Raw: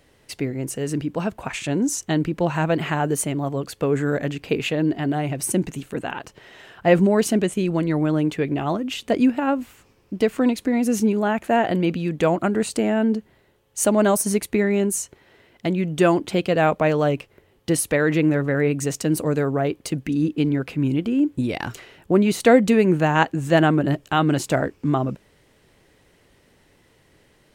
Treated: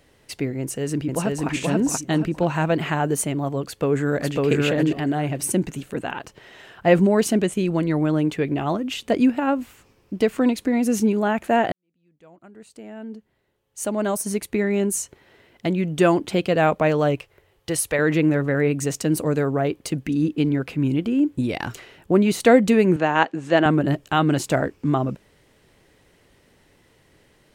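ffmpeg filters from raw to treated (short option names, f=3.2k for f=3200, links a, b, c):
-filter_complex "[0:a]asplit=2[a][b];[b]afade=t=in:st=0.6:d=0.01,afade=t=out:st=1.49:d=0.01,aecho=0:1:480|960|1440|1920:0.891251|0.267375|0.0802126|0.0240638[c];[a][c]amix=inputs=2:normalize=0,asplit=2[d][e];[e]afade=t=in:st=3.63:d=0.01,afade=t=out:st=4.44:d=0.01,aecho=0:1:550|1100|1650:0.944061|0.141609|0.0212414[f];[d][f]amix=inputs=2:normalize=0,asettb=1/sr,asplit=3[g][h][i];[g]atrim=end=17.154[j];[h]atrim=start=17.15:end=17.99,asetpts=PTS-STARTPTS,afade=t=in:d=0.004:c=qsin,afade=t=out:st=0.836:d=0.004:c=qsin,equalizer=f=230:w=1.5:g=-13.5[k];[i]atrim=start=17.986[l];[j][k]acrossfade=d=0.004:c1=hsin:c2=qsin[m];[m][l]acrossfade=d=0.004:c1=qsin:c2=hsin,asettb=1/sr,asplit=3[n][o][p];[n]atrim=end=22.964[q];[o]atrim=start=22.96:end=23.66,asetpts=PTS-STARTPTS,afade=t=in:d=0.004:c=qsin,afade=t=out:st=0.696:d=0.004:c=qsin,highpass=250,lowpass=5.3k[r];[p]atrim=start=23.656[s];[q][r]acrossfade=d=0.004:c1=hsin:c2=qsin[t];[t][s]acrossfade=d=0.004:c1=qsin:c2=hsin,asplit=2[u][v];[u]atrim=end=11.72,asetpts=PTS-STARTPTS,afade=t=out:st=11.716:d=0.004:c=hsin[w];[v]atrim=start=11.72,asetpts=PTS-STARTPTS,afade=t=in:d=3.26:c=qua[x];[w][x]concat=n=2:v=0:a=1"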